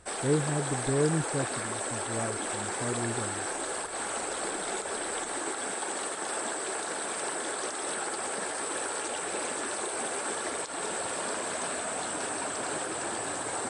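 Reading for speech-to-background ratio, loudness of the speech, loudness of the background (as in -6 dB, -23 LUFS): -0.5 dB, -33.0 LUFS, -32.5 LUFS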